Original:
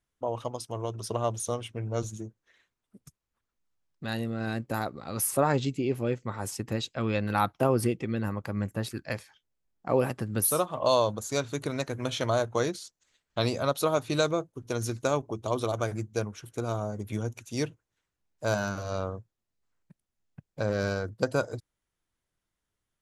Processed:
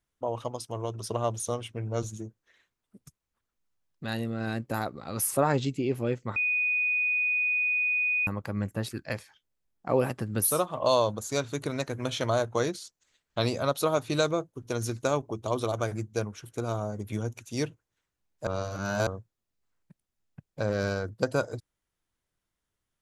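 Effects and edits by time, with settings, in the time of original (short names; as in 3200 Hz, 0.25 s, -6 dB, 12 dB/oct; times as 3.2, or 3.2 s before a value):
6.36–8.27 bleep 2480 Hz -23.5 dBFS
18.47–19.07 reverse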